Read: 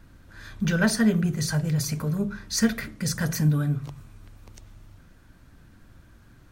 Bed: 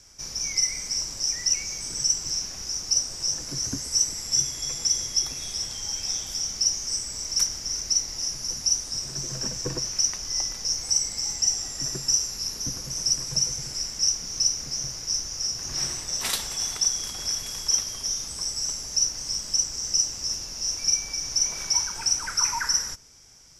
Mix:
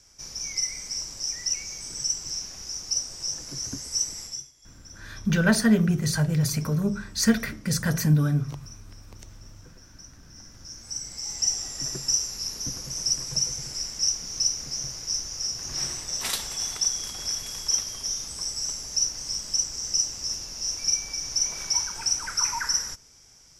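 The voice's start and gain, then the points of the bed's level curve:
4.65 s, +1.5 dB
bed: 4.24 s -4 dB
4.53 s -25 dB
10.23 s -25 dB
11.43 s -1.5 dB

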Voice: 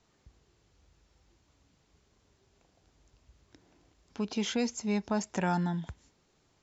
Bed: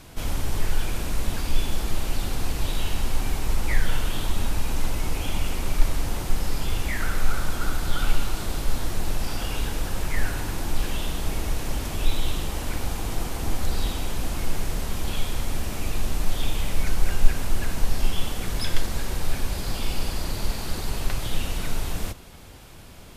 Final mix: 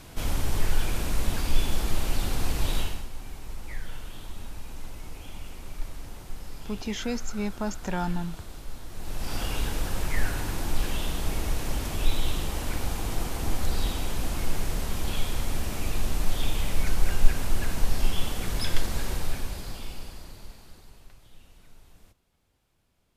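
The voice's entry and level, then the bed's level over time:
2.50 s, -0.5 dB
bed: 2.79 s -0.5 dB
3.09 s -14 dB
8.88 s -14 dB
9.36 s -1.5 dB
19.11 s -1.5 dB
21.19 s -26.5 dB

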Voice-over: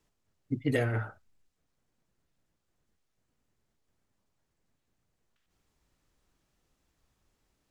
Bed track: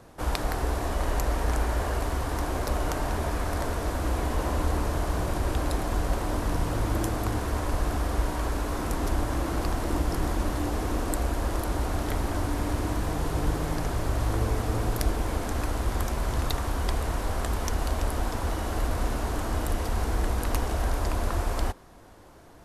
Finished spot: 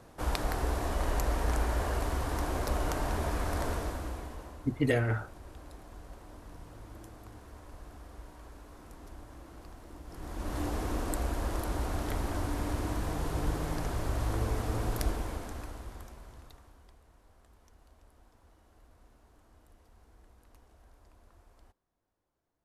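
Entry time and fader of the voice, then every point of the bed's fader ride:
4.15 s, +1.0 dB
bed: 3.74 s -3.5 dB
4.62 s -21.5 dB
10.02 s -21.5 dB
10.59 s -5 dB
15.08 s -5 dB
17.01 s -33 dB

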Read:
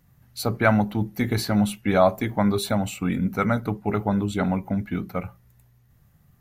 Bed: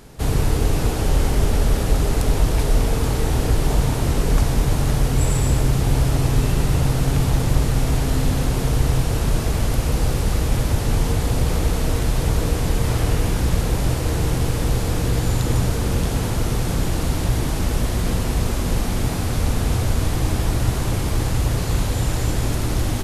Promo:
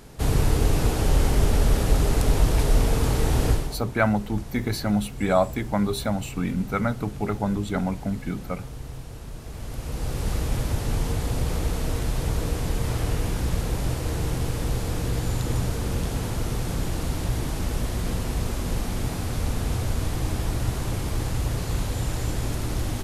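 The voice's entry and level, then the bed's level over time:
3.35 s, -2.5 dB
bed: 3.51 s -2 dB
3.8 s -18.5 dB
9.38 s -18.5 dB
10.28 s -6 dB

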